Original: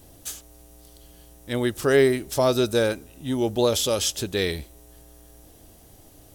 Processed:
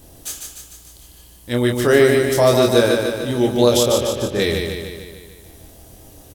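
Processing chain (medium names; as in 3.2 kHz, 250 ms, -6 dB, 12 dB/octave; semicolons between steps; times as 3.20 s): 3.83–4.40 s: low-pass 1.6 kHz 12 dB/octave; doubling 25 ms -5 dB; feedback delay 149 ms, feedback 59%, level -4.5 dB; trim +4 dB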